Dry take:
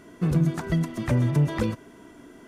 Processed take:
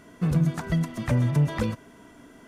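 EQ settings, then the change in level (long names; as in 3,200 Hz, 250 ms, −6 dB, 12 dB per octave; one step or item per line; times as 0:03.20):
parametric band 350 Hz −7.5 dB 0.42 octaves
0.0 dB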